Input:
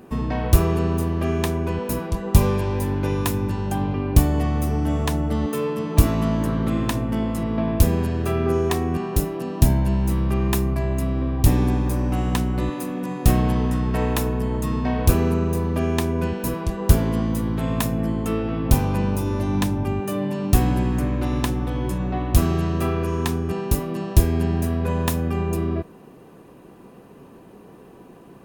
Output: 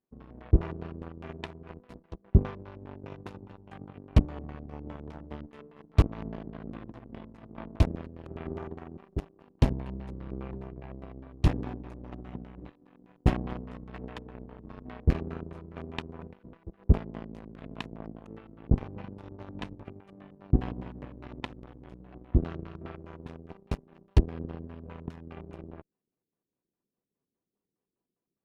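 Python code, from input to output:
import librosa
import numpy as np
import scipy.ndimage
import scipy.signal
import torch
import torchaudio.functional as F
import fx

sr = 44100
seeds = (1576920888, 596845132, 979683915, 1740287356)

y = fx.cheby_harmonics(x, sr, harmonics=(7, 8), levels_db=(-17, -42), full_scale_db=-1.0)
y = fx.filter_lfo_lowpass(y, sr, shape='square', hz=4.9, low_hz=370.0, high_hz=2900.0, q=1.0)
y = y * librosa.db_to_amplitude(-6.0)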